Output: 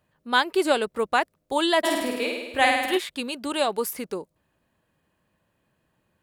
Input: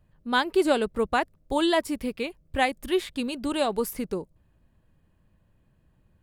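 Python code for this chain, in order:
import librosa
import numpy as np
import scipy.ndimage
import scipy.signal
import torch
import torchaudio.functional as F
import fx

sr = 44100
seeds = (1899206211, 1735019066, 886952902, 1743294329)

y = fx.highpass(x, sr, hz=540.0, slope=6)
y = fx.room_flutter(y, sr, wall_m=8.9, rt60_s=1.1, at=(1.83, 2.97), fade=0.02)
y = y * 10.0 ** (4.0 / 20.0)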